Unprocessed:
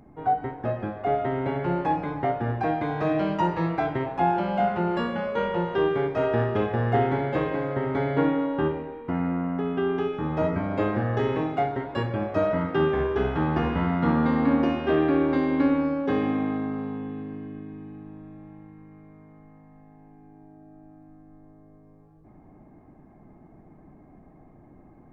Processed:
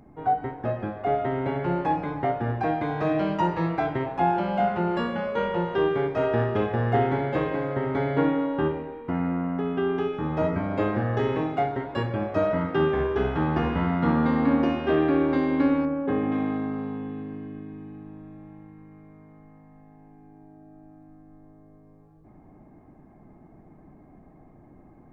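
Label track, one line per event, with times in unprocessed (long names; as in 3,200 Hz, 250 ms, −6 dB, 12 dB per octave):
15.850000	16.320000	high-frequency loss of the air 430 metres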